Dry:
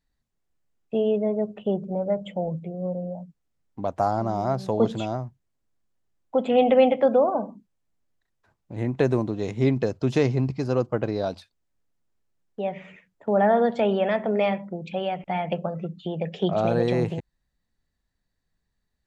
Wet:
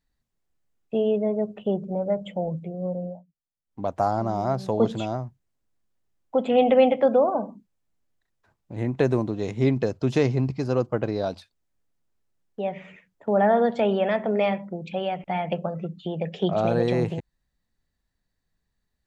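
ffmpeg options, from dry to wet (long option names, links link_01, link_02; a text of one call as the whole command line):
ffmpeg -i in.wav -filter_complex "[0:a]asplit=3[link_01][link_02][link_03];[link_01]atrim=end=3.23,asetpts=PTS-STARTPTS,afade=type=out:start_time=3.06:duration=0.17:silence=0.112202[link_04];[link_02]atrim=start=3.23:end=3.65,asetpts=PTS-STARTPTS,volume=-19dB[link_05];[link_03]atrim=start=3.65,asetpts=PTS-STARTPTS,afade=type=in:duration=0.17:silence=0.112202[link_06];[link_04][link_05][link_06]concat=n=3:v=0:a=1" out.wav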